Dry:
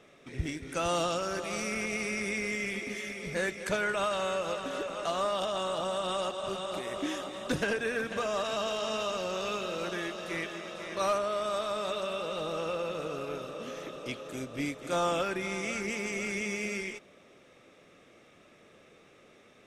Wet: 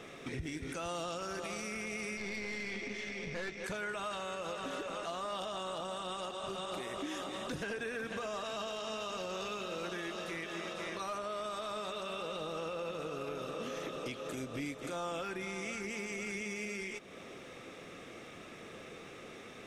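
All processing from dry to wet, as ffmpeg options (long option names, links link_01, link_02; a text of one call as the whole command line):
ffmpeg -i in.wav -filter_complex "[0:a]asettb=1/sr,asplit=3[link_01][link_02][link_03];[link_01]atrim=end=2.174[link_04];[link_02]atrim=start=2.17:end=3.64,asetpts=PTS-STARTPTS,afade=type=in:duration=0.004:curve=qsin,afade=type=out:start_time=1.466:duration=0.004:curve=qsin,lowpass=frequency=6000:width=0.5412,lowpass=frequency=6000:width=1.3066,bandreject=frequency=1300:width=12,aeval=exprs='(tanh(31.6*val(0)+0.6)-tanh(0.6))/31.6':channel_layout=same[link_05];[link_03]atrim=start=3.636[link_06];[link_04][link_05]acrossfade=duration=0.004:curve1=hsin:curve2=qsin[link_07];[link_07][link_06]acrossfade=duration=0.004:curve1=qsin:curve2=hsin,acompressor=threshold=-48dB:ratio=3,bandreject=frequency=590:width=12,alimiter=level_in=15.5dB:limit=-24dB:level=0:latency=1,volume=-15.5dB,volume=9dB" out.wav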